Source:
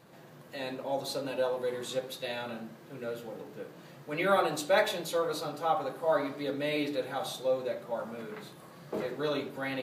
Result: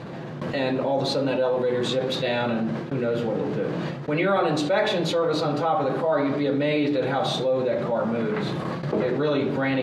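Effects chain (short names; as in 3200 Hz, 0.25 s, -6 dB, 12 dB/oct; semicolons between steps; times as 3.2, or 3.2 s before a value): HPF 41 Hz; gate with hold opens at -40 dBFS; LPF 4100 Hz 12 dB/oct; low shelf 370 Hz +7.5 dB; fast leveller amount 70%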